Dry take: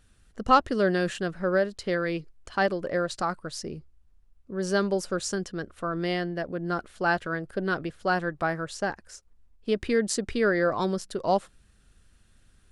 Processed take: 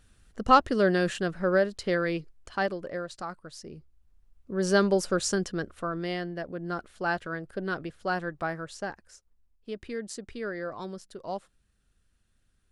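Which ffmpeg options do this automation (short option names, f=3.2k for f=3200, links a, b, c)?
-af "volume=11.5dB,afade=t=out:st=2:d=1.06:silence=0.354813,afade=t=in:st=3.64:d=1.03:silence=0.281838,afade=t=out:st=5.51:d=0.52:silence=0.473151,afade=t=out:st=8.41:d=1.28:silence=0.446684"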